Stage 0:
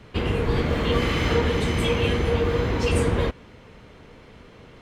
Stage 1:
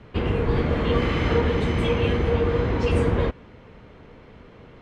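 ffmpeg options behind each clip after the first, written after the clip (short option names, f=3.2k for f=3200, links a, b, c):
-af "aemphasis=mode=reproduction:type=75fm"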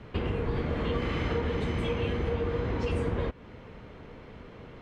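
-af "acompressor=threshold=-30dB:ratio=2.5"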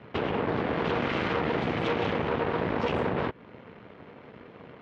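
-af "aeval=exprs='0.158*(cos(1*acos(clip(val(0)/0.158,-1,1)))-cos(1*PI/2))+0.0501*(cos(8*acos(clip(val(0)/0.158,-1,1)))-cos(8*PI/2))':c=same,highpass=140,lowpass=3.2k"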